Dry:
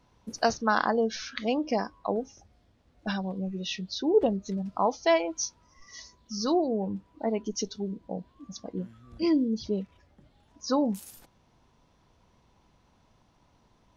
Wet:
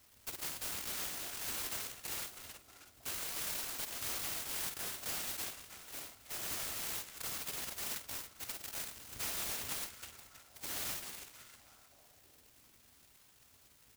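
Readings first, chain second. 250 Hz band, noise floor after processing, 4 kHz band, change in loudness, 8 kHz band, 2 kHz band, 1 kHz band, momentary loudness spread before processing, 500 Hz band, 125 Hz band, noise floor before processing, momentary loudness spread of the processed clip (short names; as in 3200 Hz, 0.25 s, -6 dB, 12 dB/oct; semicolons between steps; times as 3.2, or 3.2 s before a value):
-27.5 dB, -65 dBFS, -4.0 dB, -9.5 dB, +0.5 dB, -8.5 dB, -18.0 dB, 18 LU, -25.5 dB, -16.5 dB, -66 dBFS, 12 LU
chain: FFT order left unsorted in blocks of 256 samples; high shelf 2100 Hz +3 dB; wrapped overs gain 21 dB; doubler 49 ms -11 dB; limiter -31 dBFS, peak gain reduction 12 dB; HPF 72 Hz; bell 1100 Hz -6.5 dB 1.9 oct; on a send: delay with a stepping band-pass 0.32 s, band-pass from 2700 Hz, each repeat -0.7 oct, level -1.5 dB; on the sum: noise-modulated delay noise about 4700 Hz, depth 0.1 ms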